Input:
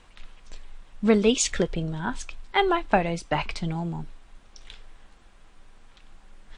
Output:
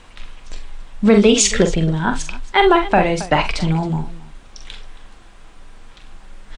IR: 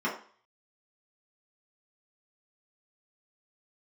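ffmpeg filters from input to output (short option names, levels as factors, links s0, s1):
-af "aecho=1:1:44|67|272:0.422|0.133|0.112,alimiter=level_in=3.35:limit=0.891:release=50:level=0:latency=1,volume=0.891"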